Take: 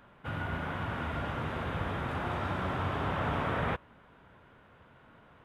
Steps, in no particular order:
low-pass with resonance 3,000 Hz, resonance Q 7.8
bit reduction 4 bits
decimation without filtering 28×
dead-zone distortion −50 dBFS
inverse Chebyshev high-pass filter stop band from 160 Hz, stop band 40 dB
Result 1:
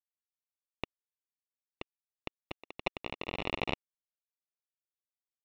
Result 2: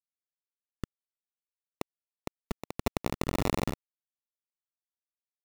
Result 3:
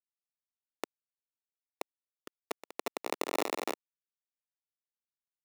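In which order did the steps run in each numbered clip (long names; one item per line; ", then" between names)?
bit reduction, then dead-zone distortion, then inverse Chebyshev high-pass filter, then decimation without filtering, then low-pass with resonance
bit reduction, then inverse Chebyshev high-pass filter, then dead-zone distortion, then low-pass with resonance, then decimation without filtering
bit reduction, then low-pass with resonance, then decimation without filtering, then inverse Chebyshev high-pass filter, then dead-zone distortion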